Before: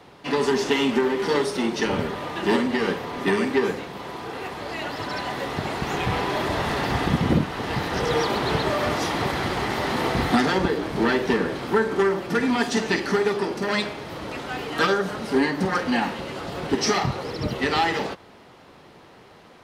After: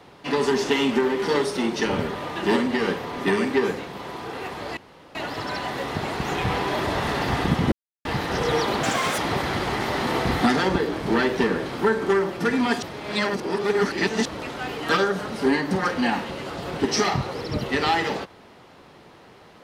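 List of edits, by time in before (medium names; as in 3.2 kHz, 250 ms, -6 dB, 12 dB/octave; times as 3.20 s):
4.77 s: insert room tone 0.38 s
7.34–7.67 s: mute
8.45–9.08 s: speed 178%
12.72–14.15 s: reverse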